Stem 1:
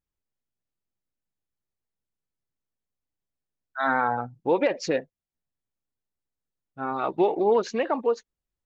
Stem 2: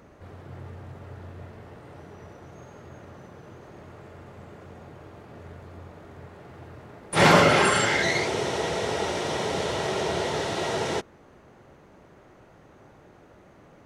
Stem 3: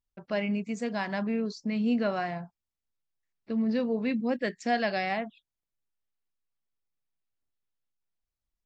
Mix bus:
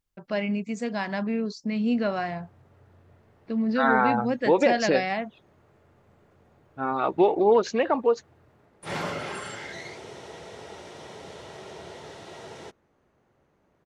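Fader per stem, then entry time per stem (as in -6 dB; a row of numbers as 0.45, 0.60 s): +2.0, -15.0, +2.0 dB; 0.00, 1.70, 0.00 s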